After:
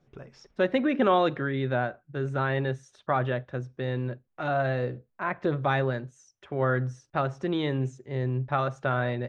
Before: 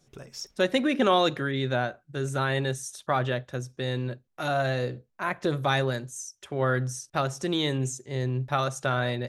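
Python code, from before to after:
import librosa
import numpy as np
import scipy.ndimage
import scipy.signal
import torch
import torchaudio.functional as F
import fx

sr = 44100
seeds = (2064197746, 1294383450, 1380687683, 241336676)

y = scipy.signal.sosfilt(scipy.signal.butter(2, 2200.0, 'lowpass', fs=sr, output='sos'), x)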